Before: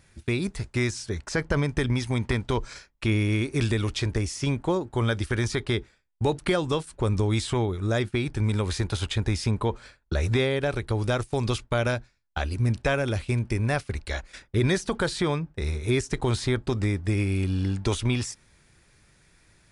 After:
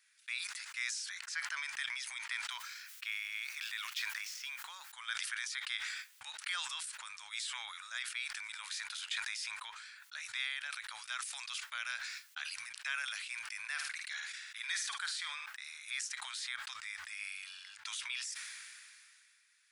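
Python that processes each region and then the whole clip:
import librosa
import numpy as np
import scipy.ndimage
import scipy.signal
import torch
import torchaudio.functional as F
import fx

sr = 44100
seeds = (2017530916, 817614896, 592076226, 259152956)

y = fx.chain(x, sr, fx.median_filter(points=5),
    fx.highpass(hz=58.0, slope=12),
    fx.quant_dither(seeds[0], bits=12, dither='triangular'), at=(2.5, 4.92))
y = fx.chain(y, sr, fx.highpass(hz=320.0, slope=6),
    fx.room_flutter(wall_m=8.9, rt60_s=0.27), at=(13.71, 15.46))
y = scipy.signal.sosfilt(scipy.signal.cheby2(4, 60, 430.0, 'highpass', fs=sr, output='sos'), y)
y = fx.sustainer(y, sr, db_per_s=25.0)
y = F.gain(torch.from_numpy(y), -7.0).numpy()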